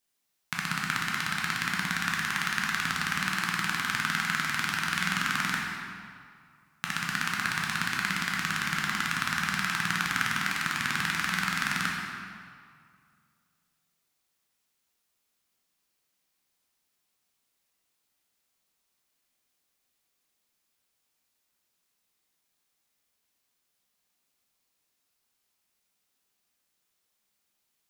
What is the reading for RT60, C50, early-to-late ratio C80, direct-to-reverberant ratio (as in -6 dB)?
2.2 s, 0.0 dB, 2.0 dB, -3.0 dB